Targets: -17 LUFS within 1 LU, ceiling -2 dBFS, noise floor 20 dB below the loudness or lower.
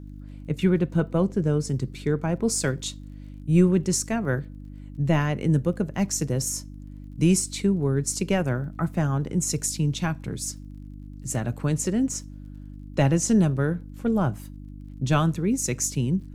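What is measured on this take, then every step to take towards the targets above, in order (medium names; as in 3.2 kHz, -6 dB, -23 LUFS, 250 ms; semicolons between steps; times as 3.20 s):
tick rate 33 per s; hum 50 Hz; highest harmonic 300 Hz; hum level -37 dBFS; loudness -25.0 LUFS; peak level -8.0 dBFS; loudness target -17.0 LUFS
-> de-click; de-hum 50 Hz, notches 6; trim +8 dB; peak limiter -2 dBFS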